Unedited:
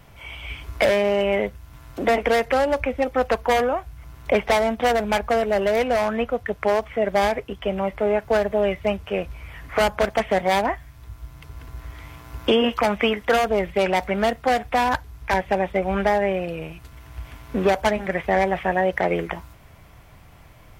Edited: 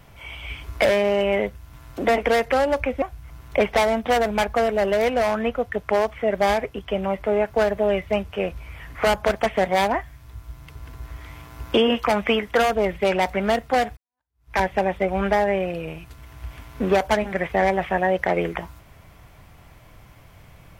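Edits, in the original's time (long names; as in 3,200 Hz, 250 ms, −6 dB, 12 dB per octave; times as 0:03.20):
0:03.02–0:03.76: remove
0:14.71–0:15.29: fade in exponential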